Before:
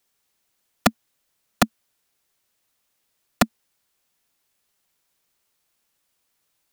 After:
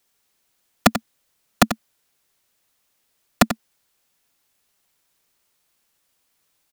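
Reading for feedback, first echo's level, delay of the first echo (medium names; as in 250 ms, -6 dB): no regular repeats, -10.5 dB, 90 ms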